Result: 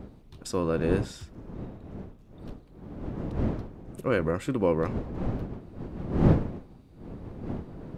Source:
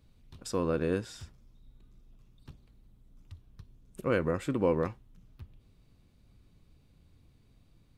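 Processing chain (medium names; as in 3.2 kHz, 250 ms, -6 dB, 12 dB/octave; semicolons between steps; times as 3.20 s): wind noise 270 Hz -35 dBFS; trim +2.5 dB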